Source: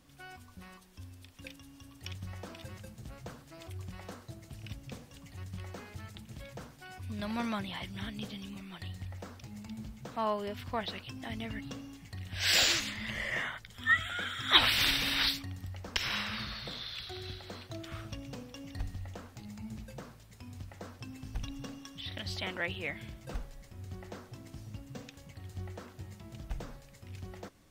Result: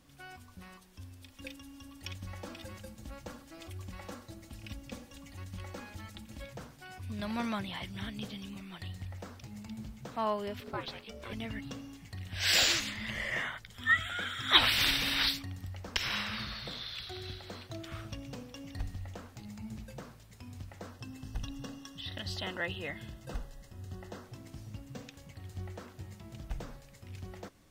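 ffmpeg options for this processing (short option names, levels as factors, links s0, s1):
-filter_complex "[0:a]asettb=1/sr,asplit=3[s0][s1][s2];[s0]atrim=end=1.224[s3];[s1]atrim=start=1.22:end=6.45,asetpts=PTS-STARTPTS,afade=t=in:d=0.004:c=qsin,afade=t=out:st=5.226:d=0.004:c=qsin,aecho=1:1:3.6:0.65,atrim=end_sample=230643[s4];[s2]atrim=start=6.446[s5];[s3][s4]acrossfade=d=0.004:c1=hsin:c2=qsin[s6];[s6][s5]acrossfade=d=0.004:c1=qsin:c2=hsin,asettb=1/sr,asplit=3[s7][s8][s9];[s7]atrim=end=10.604[s10];[s8]atrim=start=10.6:end=11.33,asetpts=PTS-STARTPTS,afade=t=in:d=0.004:c=qsin,afade=t=out:st=0.726:d=0.004:c=qsin,aeval=exprs='val(0)*sin(2*PI*330*n/s)':c=same[s11];[s9]atrim=start=11.326[s12];[s10][s11]acrossfade=d=0.004:c1=hsin:c2=qsin[s13];[s13][s12]acrossfade=d=0.004:c1=qsin:c2=hsin,asettb=1/sr,asplit=3[s14][s15][s16];[s14]atrim=end=20.914[s17];[s15]atrim=start=20.91:end=24.24,asetpts=PTS-STARTPTS,afade=t=in:d=0.004:c=qsin,afade=t=out:st=3.326:d=0.004:c=qsin,asuperstop=centerf=2300:order=8:qfactor=6.8[s18];[s16]atrim=start=24.236[s19];[s17][s18]acrossfade=d=0.004:c1=hsin:c2=qsin[s20];[s20][s19]acrossfade=d=0.004:c1=qsin:c2=hsin"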